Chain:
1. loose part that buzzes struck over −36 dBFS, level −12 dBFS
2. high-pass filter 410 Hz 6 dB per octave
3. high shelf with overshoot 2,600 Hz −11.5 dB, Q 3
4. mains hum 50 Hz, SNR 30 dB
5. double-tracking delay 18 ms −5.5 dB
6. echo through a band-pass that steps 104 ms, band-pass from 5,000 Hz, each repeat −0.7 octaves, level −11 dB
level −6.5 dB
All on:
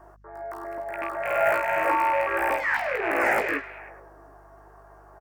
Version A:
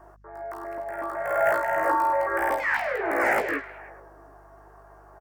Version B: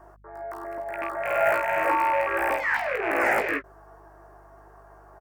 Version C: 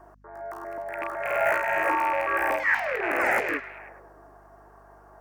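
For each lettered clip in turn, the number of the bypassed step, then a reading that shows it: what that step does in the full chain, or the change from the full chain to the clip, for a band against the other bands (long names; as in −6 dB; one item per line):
1, 4 kHz band −3.0 dB
6, echo-to-direct ratio −15.5 dB to none audible
5, 2 kHz band +2.0 dB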